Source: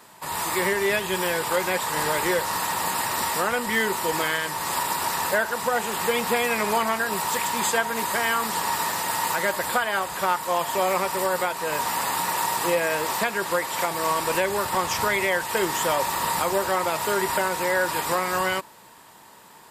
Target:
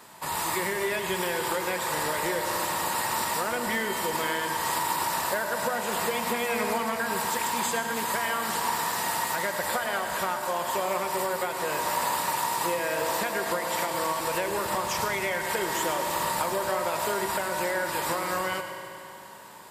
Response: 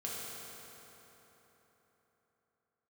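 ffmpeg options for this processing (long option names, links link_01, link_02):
-filter_complex "[0:a]acompressor=threshold=-26dB:ratio=6,asplit=2[link_01][link_02];[1:a]atrim=start_sample=2205,asetrate=61740,aresample=44100,adelay=103[link_03];[link_02][link_03]afir=irnorm=-1:irlink=0,volume=-4.5dB[link_04];[link_01][link_04]amix=inputs=2:normalize=0"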